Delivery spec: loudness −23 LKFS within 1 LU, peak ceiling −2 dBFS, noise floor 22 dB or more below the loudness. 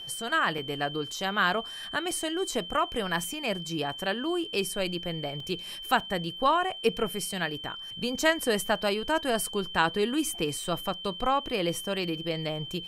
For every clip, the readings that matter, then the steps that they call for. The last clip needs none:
number of dropouts 7; longest dropout 2.7 ms; interfering tone 3,100 Hz; level of the tone −38 dBFS; integrated loudness −29.0 LKFS; sample peak −9.0 dBFS; target loudness −23.0 LKFS
→ repair the gap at 0:00.58/0:01.12/0:02.11/0:03.24/0:05.40/0:06.00/0:10.64, 2.7 ms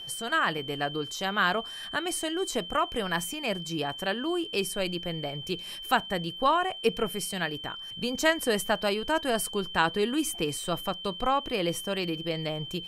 number of dropouts 0; interfering tone 3,100 Hz; level of the tone −38 dBFS
→ notch filter 3,100 Hz, Q 30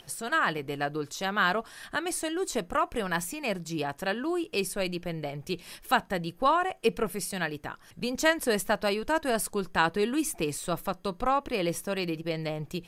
interfering tone none found; integrated loudness −29.5 LKFS; sample peak −9.0 dBFS; target loudness −23.0 LKFS
→ level +6.5 dB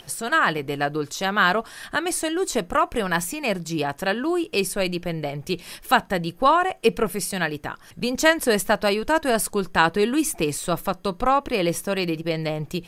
integrated loudness −23.0 LKFS; sample peak −2.5 dBFS; background noise floor −48 dBFS

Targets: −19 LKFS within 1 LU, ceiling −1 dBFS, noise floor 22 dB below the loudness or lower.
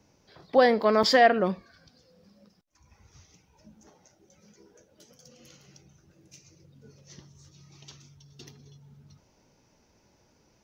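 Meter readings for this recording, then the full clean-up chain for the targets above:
number of dropouts 1; longest dropout 4.8 ms; integrated loudness −22.0 LKFS; sample peak −7.5 dBFS; target loudness −19.0 LKFS
→ repair the gap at 0:01.03, 4.8 ms
level +3 dB

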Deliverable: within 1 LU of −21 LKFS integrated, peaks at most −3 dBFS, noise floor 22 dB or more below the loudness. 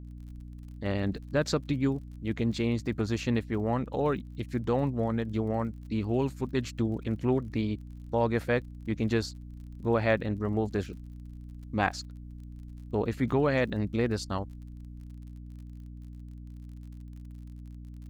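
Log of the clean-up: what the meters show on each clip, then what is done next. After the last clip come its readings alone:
crackle rate 43 per second; mains hum 60 Hz; hum harmonics up to 300 Hz; level of the hum −41 dBFS; integrated loudness −30.5 LKFS; sample peak −11.5 dBFS; target loudness −21.0 LKFS
→ click removal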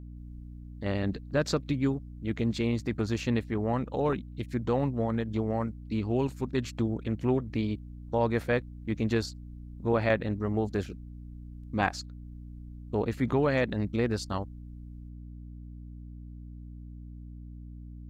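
crackle rate 0.11 per second; mains hum 60 Hz; hum harmonics up to 300 Hz; level of the hum −41 dBFS
→ mains-hum notches 60/120/180/240/300 Hz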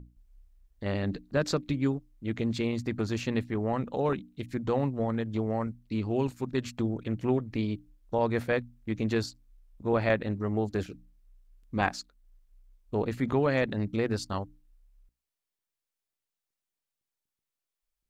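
mains hum none found; integrated loudness −31.0 LKFS; sample peak −11.0 dBFS; target loudness −21.0 LKFS
→ level +10 dB
brickwall limiter −3 dBFS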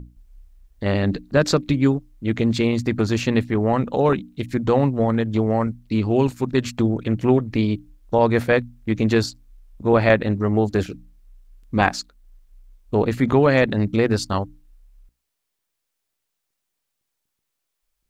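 integrated loudness −21.0 LKFS; sample peak −3.0 dBFS; background noise floor −79 dBFS

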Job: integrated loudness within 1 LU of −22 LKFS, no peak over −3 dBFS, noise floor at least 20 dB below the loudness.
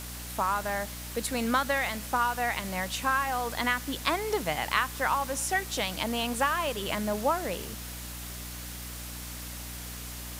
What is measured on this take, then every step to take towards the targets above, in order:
mains hum 60 Hz; hum harmonics up to 300 Hz; level of the hum −40 dBFS; background noise floor −40 dBFS; target noise floor −50 dBFS; integrated loudness −30.0 LKFS; sample peak −9.5 dBFS; target loudness −22.0 LKFS
→ hum removal 60 Hz, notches 5
broadband denoise 10 dB, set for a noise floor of −40 dBFS
level +8 dB
brickwall limiter −3 dBFS

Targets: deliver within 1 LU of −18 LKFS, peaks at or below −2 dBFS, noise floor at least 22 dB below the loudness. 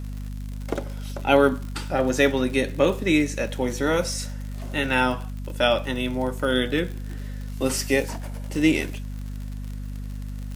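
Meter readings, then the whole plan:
crackle rate 58 per second; mains hum 50 Hz; hum harmonics up to 250 Hz; level of the hum −30 dBFS; integrated loudness −24.0 LKFS; sample peak −3.5 dBFS; target loudness −18.0 LKFS
→ click removal
mains-hum notches 50/100/150/200/250 Hz
level +6 dB
brickwall limiter −2 dBFS

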